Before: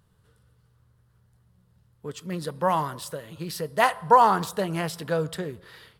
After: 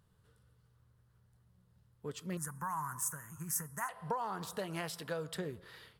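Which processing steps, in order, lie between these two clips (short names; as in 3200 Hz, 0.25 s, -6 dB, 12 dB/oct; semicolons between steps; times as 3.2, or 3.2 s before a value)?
4.58–5.36 low shelf 490 Hz -6.5 dB; compressor 8:1, threshold -28 dBFS, peak gain reduction 16.5 dB; 2.37–3.89 EQ curve 150 Hz 0 dB, 560 Hz -20 dB, 950 Hz +3 dB, 1600 Hz +5 dB, 4100 Hz -29 dB, 6300 Hz +11 dB; gain -6 dB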